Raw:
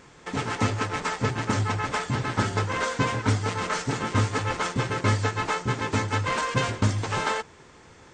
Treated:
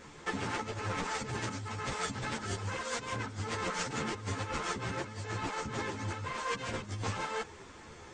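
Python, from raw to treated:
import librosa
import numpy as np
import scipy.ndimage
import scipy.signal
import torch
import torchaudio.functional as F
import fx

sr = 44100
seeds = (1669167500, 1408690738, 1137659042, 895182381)

y = fx.high_shelf(x, sr, hz=4400.0, db=6.0, at=(1.1, 3.15))
y = fx.over_compress(y, sr, threshold_db=-32.0, ratio=-1.0)
y = fx.ensemble(y, sr)
y = F.gain(torch.from_numpy(y), -2.0).numpy()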